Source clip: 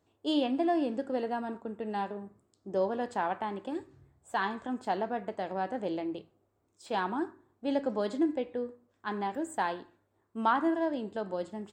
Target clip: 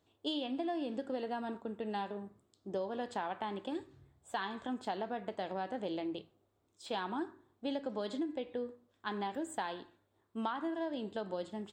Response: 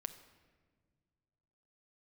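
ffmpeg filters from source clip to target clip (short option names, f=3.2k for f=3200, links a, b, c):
-af "equalizer=f=3.5k:t=o:w=0.66:g=8,acompressor=threshold=-31dB:ratio=10,volume=-2dB"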